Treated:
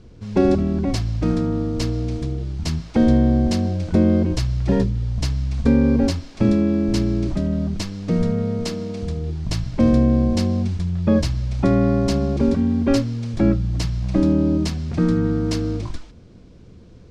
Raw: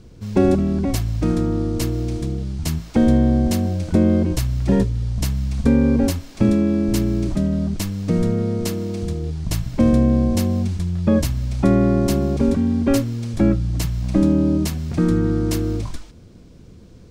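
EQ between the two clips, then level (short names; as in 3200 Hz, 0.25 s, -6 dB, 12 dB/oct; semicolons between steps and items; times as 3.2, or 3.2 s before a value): notches 50/100/150/200/250/300/350 Hz; dynamic EQ 4800 Hz, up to +6 dB, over -46 dBFS, Q 2; air absorption 73 m; 0.0 dB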